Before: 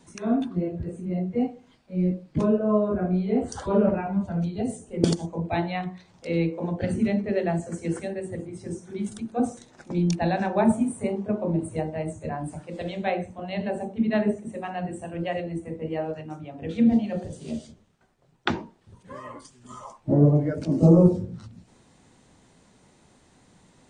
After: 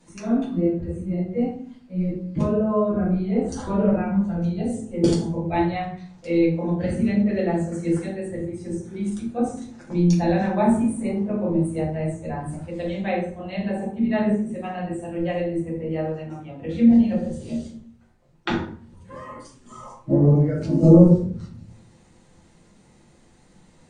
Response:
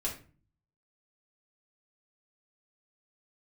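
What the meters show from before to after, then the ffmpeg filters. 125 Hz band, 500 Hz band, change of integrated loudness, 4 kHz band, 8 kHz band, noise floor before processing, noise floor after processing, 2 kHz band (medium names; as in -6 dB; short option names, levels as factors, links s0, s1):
+3.5 dB, +2.0 dB, +3.5 dB, 0.0 dB, +0.5 dB, -60 dBFS, -55 dBFS, +1.0 dB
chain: -filter_complex "[1:a]atrim=start_sample=2205,asetrate=33957,aresample=44100[s0];[0:a][s0]afir=irnorm=-1:irlink=0,volume=0.631"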